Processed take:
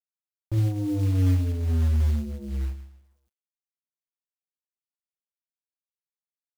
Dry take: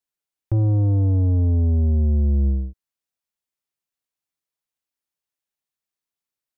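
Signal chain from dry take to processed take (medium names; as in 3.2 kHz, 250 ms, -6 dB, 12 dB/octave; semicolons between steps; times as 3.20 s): FDN reverb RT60 0.49 s, low-frequency decay 1.55×, high-frequency decay 0.95×, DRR 3.5 dB; companded quantiser 6-bit; trim -8 dB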